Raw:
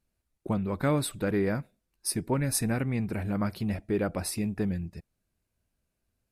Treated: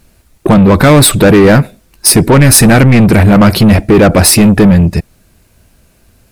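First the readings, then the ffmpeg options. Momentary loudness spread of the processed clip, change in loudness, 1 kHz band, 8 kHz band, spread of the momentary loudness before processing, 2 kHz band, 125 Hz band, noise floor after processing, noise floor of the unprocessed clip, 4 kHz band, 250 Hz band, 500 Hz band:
6 LU, +24.0 dB, +24.0 dB, +24.5 dB, 7 LU, +25.0 dB, +24.0 dB, -50 dBFS, -82 dBFS, +26.5 dB, +23.5 dB, +23.0 dB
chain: -af "apsyclip=26dB,acontrast=79,volume=-1dB"

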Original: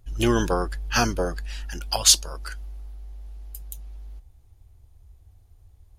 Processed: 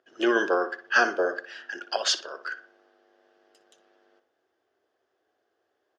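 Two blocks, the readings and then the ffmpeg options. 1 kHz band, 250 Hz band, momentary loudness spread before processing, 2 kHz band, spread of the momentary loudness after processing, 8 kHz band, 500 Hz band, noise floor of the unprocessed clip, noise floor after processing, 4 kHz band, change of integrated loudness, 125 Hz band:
0.0 dB, -4.0 dB, 24 LU, +6.5 dB, 15 LU, -14.5 dB, +1.0 dB, -55 dBFS, -77 dBFS, -6.5 dB, -4.0 dB, under -30 dB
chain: -filter_complex "[0:a]highpass=f=350:w=0.5412,highpass=f=350:w=1.3066,equalizer=f=380:t=q:w=4:g=4,equalizer=f=630:t=q:w=4:g=3,equalizer=f=900:t=q:w=4:g=-7,equalizer=f=1.6k:t=q:w=4:g=10,equalizer=f=2.3k:t=q:w=4:g=-8,equalizer=f=4k:t=q:w=4:g=-9,lowpass=f=4.6k:w=0.5412,lowpass=f=4.6k:w=1.3066,asplit=2[a][b];[b]adelay=60,lowpass=f=2.7k:p=1,volume=-11dB,asplit=2[c][d];[d]adelay=60,lowpass=f=2.7k:p=1,volume=0.39,asplit=2[e][f];[f]adelay=60,lowpass=f=2.7k:p=1,volume=0.39,asplit=2[g][h];[h]adelay=60,lowpass=f=2.7k:p=1,volume=0.39[i];[c][e][g][i]amix=inputs=4:normalize=0[j];[a][j]amix=inputs=2:normalize=0"

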